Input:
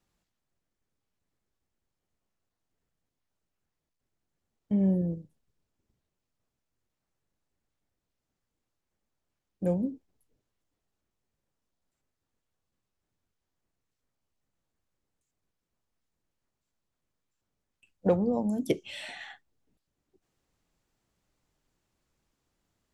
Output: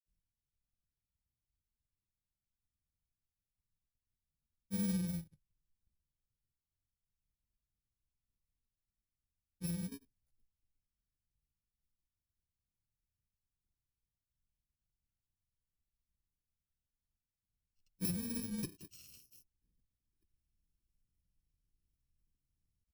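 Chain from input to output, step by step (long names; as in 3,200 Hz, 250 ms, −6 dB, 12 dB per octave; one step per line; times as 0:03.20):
samples in bit-reversed order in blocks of 64 samples
granular cloud, pitch spread up and down by 0 semitones
guitar amp tone stack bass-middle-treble 10-0-1
level +8 dB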